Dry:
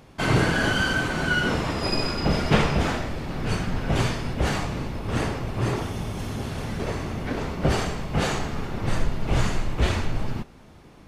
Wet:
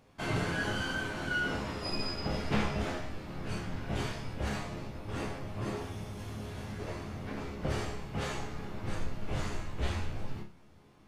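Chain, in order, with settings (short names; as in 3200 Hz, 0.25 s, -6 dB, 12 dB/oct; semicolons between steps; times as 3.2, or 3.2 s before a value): resonator bank C#2 major, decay 0.35 s; gain +1 dB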